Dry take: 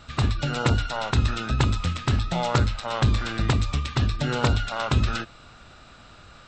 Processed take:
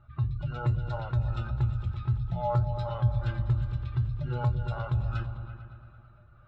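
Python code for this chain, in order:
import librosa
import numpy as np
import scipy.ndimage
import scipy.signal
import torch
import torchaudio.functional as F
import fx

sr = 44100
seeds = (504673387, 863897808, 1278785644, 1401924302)

p1 = fx.spec_expand(x, sr, power=1.8)
p2 = fx.peak_eq(p1, sr, hz=290.0, db=-5.0, octaves=0.82)
p3 = fx.comb_fb(p2, sr, f0_hz=120.0, decay_s=0.17, harmonics='odd', damping=0.0, mix_pct=80)
p4 = p3 + fx.echo_opening(p3, sr, ms=112, hz=200, octaves=2, feedback_pct=70, wet_db=-6, dry=0)
y = fx.env_lowpass(p4, sr, base_hz=1600.0, full_db=-22.5)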